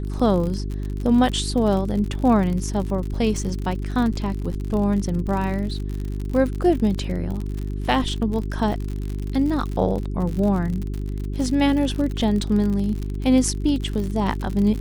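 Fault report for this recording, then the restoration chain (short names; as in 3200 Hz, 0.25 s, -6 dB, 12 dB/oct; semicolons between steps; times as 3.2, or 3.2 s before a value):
crackle 59/s -27 dBFS
hum 50 Hz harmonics 8 -27 dBFS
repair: de-click; de-hum 50 Hz, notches 8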